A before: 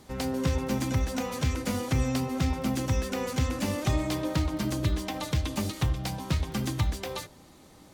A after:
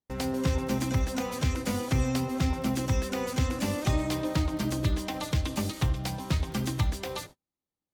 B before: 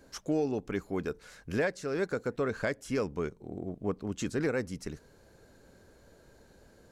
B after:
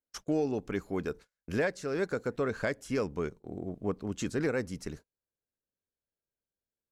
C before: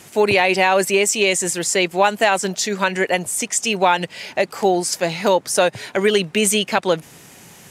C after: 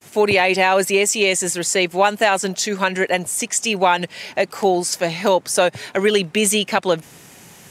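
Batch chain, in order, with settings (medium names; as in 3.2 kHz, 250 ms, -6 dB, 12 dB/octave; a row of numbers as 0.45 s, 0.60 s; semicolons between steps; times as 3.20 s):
gate -45 dBFS, range -41 dB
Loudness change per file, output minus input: 0.0 LU, 0.0 LU, 0.0 LU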